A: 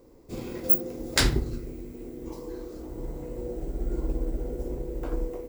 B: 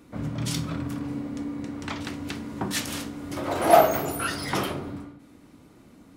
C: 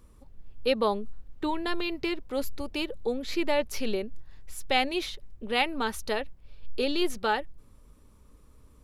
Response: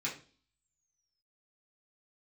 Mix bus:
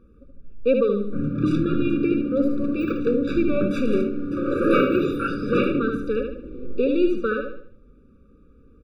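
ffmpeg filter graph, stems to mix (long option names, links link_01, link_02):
-filter_complex "[0:a]flanger=delay=19:depth=5:speed=0.89,adelay=2100,volume=0.5dB,asplit=2[link_01][link_02];[link_02]volume=-17dB[link_03];[1:a]adelay=1000,volume=0.5dB[link_04];[2:a]volume=0dB,asplit=3[link_05][link_06][link_07];[link_06]volume=-5dB[link_08];[link_07]apad=whole_len=334416[link_09];[link_01][link_09]sidechaincompress=threshold=-37dB:ratio=4:attack=16:release=1250[link_10];[link_03][link_08]amix=inputs=2:normalize=0,aecho=0:1:74|148|222|296|370:1|0.39|0.152|0.0593|0.0231[link_11];[link_10][link_04][link_05][link_11]amix=inputs=4:normalize=0,firequalizer=gain_entry='entry(110,0);entry(200,8);entry(6400,-19);entry(12000,-23)':delay=0.05:min_phase=1,afftfilt=real='re*eq(mod(floor(b*sr/1024/570),2),0)':imag='im*eq(mod(floor(b*sr/1024/570),2),0)':win_size=1024:overlap=0.75"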